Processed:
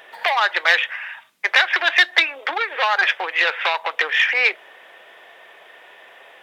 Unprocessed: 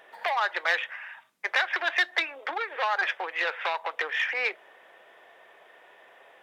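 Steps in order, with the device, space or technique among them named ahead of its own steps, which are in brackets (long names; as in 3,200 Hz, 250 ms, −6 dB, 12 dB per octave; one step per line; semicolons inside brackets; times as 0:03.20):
presence and air boost (parametric band 3,100 Hz +6 dB 1.7 octaves; high-shelf EQ 9,100 Hz +5.5 dB)
level +6 dB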